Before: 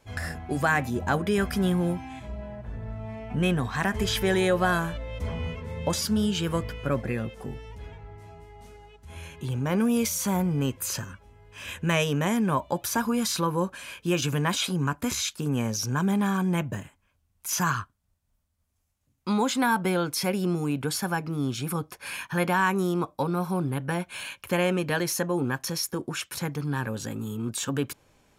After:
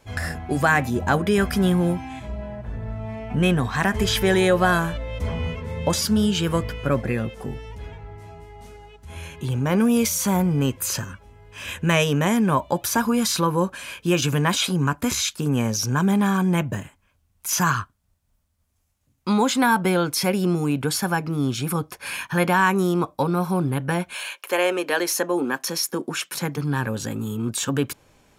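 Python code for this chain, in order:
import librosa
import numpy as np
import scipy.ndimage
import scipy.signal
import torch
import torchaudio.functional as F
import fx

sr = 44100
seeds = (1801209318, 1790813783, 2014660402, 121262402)

y = fx.highpass(x, sr, hz=fx.line((24.13, 430.0), (26.56, 140.0)), slope=24, at=(24.13, 26.56), fade=0.02)
y = y * librosa.db_to_amplitude(5.0)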